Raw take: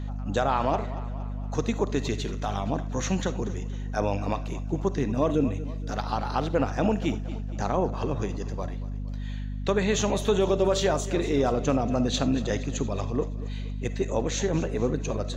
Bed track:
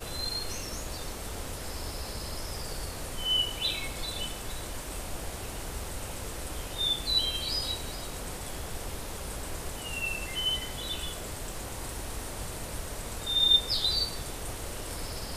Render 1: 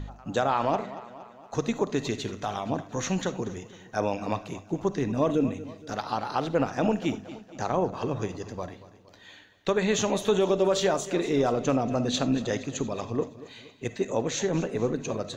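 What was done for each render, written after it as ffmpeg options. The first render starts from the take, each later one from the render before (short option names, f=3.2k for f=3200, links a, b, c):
-af "bandreject=f=50:t=h:w=4,bandreject=f=100:t=h:w=4,bandreject=f=150:t=h:w=4,bandreject=f=200:t=h:w=4,bandreject=f=250:t=h:w=4"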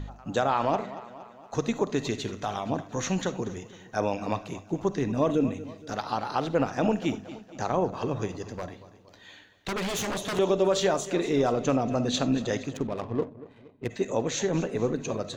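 -filter_complex "[0:a]asettb=1/sr,asplit=3[a][b][c];[a]atrim=end=8.414[d];[b]atrim=start=8.41:end=10.39,asetpts=PTS-STARTPTS,afade=t=in:d=0.004:c=qsin,afade=t=out:st=1.976:d=0.004:c=qsin,aeval=exprs='0.0562*(abs(mod(val(0)/0.0562+3,4)-2)-1)':c=same[e];[c]atrim=start=10.386[f];[d][e]acrossfade=d=0.004:c1=hsin:c2=qsin[g];[g][f]acrossfade=d=0.004:c1=qsin:c2=hsin,asplit=3[h][i][j];[h]afade=t=out:st=12.72:d=0.02[k];[i]adynamicsmooth=sensitivity=6:basefreq=680,afade=t=in:st=12.72:d=0.02,afade=t=out:st=13.89:d=0.02[l];[j]afade=t=in:st=13.89:d=0.02[m];[k][l][m]amix=inputs=3:normalize=0"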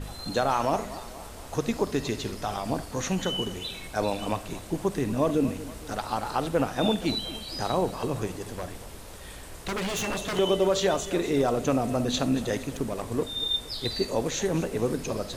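-filter_complex "[1:a]volume=-6dB[a];[0:a][a]amix=inputs=2:normalize=0"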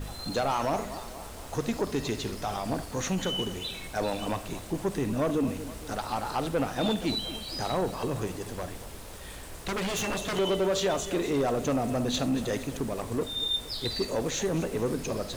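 -af "acrusher=bits=8:mix=0:aa=0.000001,asoftclip=type=tanh:threshold=-20.5dB"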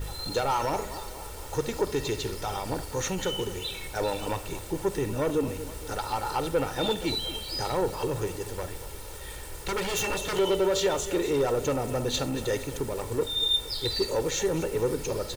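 -af "highshelf=f=11k:g=5.5,aecho=1:1:2.2:0.58"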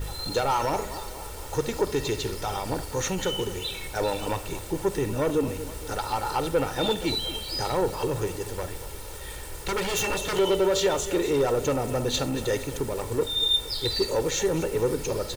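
-af "volume=2dB"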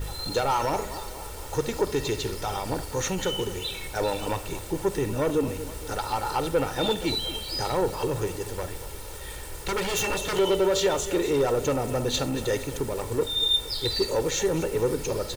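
-af anull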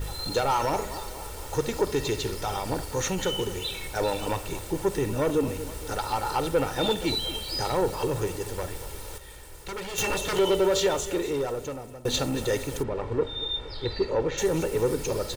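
-filter_complex "[0:a]asplit=3[a][b][c];[a]afade=t=out:st=12.82:d=0.02[d];[b]lowpass=2.4k,afade=t=in:st=12.82:d=0.02,afade=t=out:st=14.37:d=0.02[e];[c]afade=t=in:st=14.37:d=0.02[f];[d][e][f]amix=inputs=3:normalize=0,asplit=4[g][h][i][j];[g]atrim=end=9.182[k];[h]atrim=start=9.178:end=9.982,asetpts=PTS-STARTPTS,volume=-7.5dB[l];[i]atrim=start=9.978:end=12.05,asetpts=PTS-STARTPTS,afade=t=out:st=0.802:d=1.27:silence=0.0944061[m];[j]atrim=start=12.05,asetpts=PTS-STARTPTS,afade=t=in:d=0.004:c=hsin:silence=0.0944061[n];[k][l]acrossfade=d=0.004:c1=hsin:c2=hsin[o];[m][n]concat=n=2:v=0:a=1[p];[o][p]acrossfade=d=0.004:c1=hsin:c2=hsin"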